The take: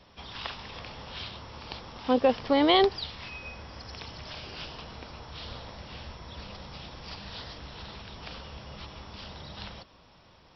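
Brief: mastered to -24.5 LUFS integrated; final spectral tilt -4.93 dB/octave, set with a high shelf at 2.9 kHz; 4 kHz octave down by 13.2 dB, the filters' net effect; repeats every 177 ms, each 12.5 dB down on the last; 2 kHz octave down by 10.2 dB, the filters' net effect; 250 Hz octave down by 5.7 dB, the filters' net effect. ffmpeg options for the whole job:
-af "equalizer=f=250:t=o:g=-7,equalizer=f=2000:t=o:g=-6.5,highshelf=f=2900:g=-9,equalizer=f=4000:t=o:g=-8,aecho=1:1:177|354|531:0.237|0.0569|0.0137,volume=2.66"

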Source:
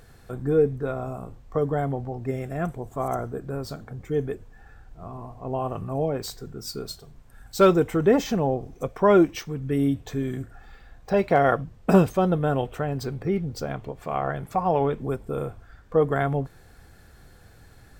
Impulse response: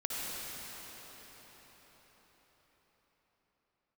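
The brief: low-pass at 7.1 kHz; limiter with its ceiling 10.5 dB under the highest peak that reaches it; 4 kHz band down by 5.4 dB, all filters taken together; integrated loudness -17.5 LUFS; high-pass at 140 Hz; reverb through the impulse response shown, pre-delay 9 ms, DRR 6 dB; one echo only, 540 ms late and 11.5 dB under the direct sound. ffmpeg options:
-filter_complex "[0:a]highpass=140,lowpass=7100,equalizer=f=4000:t=o:g=-6.5,alimiter=limit=0.188:level=0:latency=1,aecho=1:1:540:0.266,asplit=2[s0][s1];[1:a]atrim=start_sample=2205,adelay=9[s2];[s1][s2]afir=irnorm=-1:irlink=0,volume=0.266[s3];[s0][s3]amix=inputs=2:normalize=0,volume=3.16"

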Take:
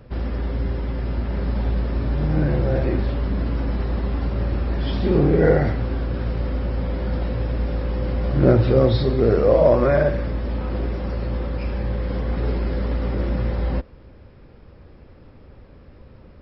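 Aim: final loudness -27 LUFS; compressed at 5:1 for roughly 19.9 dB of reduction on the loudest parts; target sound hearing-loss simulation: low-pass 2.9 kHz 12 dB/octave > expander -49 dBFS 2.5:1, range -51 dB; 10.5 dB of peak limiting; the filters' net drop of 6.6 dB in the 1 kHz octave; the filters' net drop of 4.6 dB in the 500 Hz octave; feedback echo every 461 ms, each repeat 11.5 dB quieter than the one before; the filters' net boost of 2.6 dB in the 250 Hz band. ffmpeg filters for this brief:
-af "equalizer=f=250:t=o:g=5.5,equalizer=f=500:t=o:g=-5.5,equalizer=f=1000:t=o:g=-7.5,acompressor=threshold=0.02:ratio=5,alimiter=level_in=2.99:limit=0.0631:level=0:latency=1,volume=0.335,lowpass=2900,aecho=1:1:461|922|1383:0.266|0.0718|0.0194,agate=range=0.00282:threshold=0.00355:ratio=2.5,volume=5.62"

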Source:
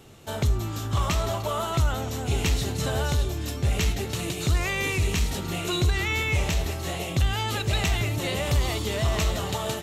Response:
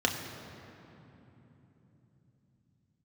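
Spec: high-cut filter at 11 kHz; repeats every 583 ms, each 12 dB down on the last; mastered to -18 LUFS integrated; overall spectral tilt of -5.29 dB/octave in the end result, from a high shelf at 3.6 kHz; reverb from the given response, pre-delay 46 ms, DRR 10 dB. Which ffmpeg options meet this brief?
-filter_complex "[0:a]lowpass=11000,highshelf=f=3600:g=-5,aecho=1:1:583|1166|1749:0.251|0.0628|0.0157,asplit=2[s0][s1];[1:a]atrim=start_sample=2205,adelay=46[s2];[s1][s2]afir=irnorm=-1:irlink=0,volume=0.0944[s3];[s0][s3]amix=inputs=2:normalize=0,volume=2.51"

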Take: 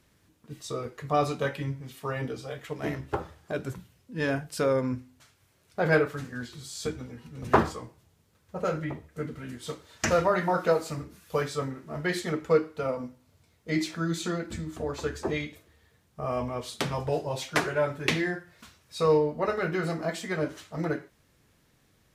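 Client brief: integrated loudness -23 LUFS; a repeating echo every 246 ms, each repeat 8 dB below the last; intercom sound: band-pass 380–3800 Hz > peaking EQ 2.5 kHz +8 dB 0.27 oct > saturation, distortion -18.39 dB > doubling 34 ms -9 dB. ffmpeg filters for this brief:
-filter_complex "[0:a]highpass=380,lowpass=3800,equalizer=f=2500:t=o:w=0.27:g=8,aecho=1:1:246|492|738|984|1230:0.398|0.159|0.0637|0.0255|0.0102,asoftclip=threshold=0.168,asplit=2[s0][s1];[s1]adelay=34,volume=0.355[s2];[s0][s2]amix=inputs=2:normalize=0,volume=2.66"

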